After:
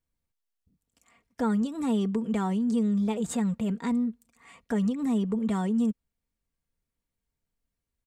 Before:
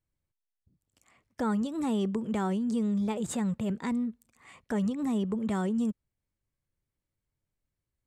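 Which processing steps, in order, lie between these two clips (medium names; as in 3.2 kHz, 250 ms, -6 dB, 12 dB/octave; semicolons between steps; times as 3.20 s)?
comb 4.3 ms, depth 51%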